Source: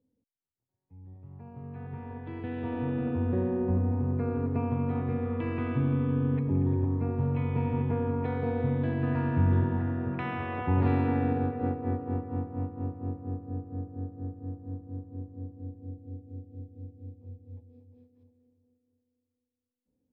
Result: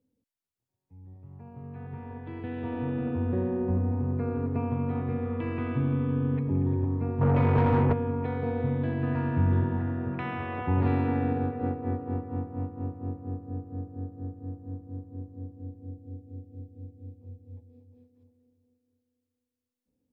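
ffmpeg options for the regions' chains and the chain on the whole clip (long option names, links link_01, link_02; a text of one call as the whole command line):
ffmpeg -i in.wav -filter_complex "[0:a]asettb=1/sr,asplit=3[link_01][link_02][link_03];[link_01]atrim=end=7.214[link_04];[link_02]atrim=start=7.21:end=7.93,asetpts=PTS-STARTPTS,afade=type=in:duration=0.004:curve=qsin,afade=type=out:start_time=0.716:duration=0.004:curve=qsin,lowpass=2300,equalizer=frequency=99:width=1.5:gain=8,asplit=2[link_05][link_06];[link_06]highpass=frequency=720:poles=1,volume=26dB,asoftclip=type=tanh:threshold=-14dB[link_07];[link_05][link_07]amix=inputs=2:normalize=0,lowpass=frequency=1300:poles=1,volume=-6dB[link_08];[link_03]atrim=start=7.926[link_09];[link_04][link_08]acrossfade=duration=0.004:curve1=hsin:curve2=qsin[link_10];[link_10][link_09]acrossfade=duration=0.004:curve1=qsin:curve2=hsin" out.wav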